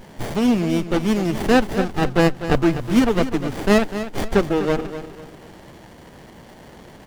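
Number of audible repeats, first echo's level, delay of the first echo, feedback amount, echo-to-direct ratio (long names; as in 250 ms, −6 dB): 3, −11.5 dB, 249 ms, 35%, −11.0 dB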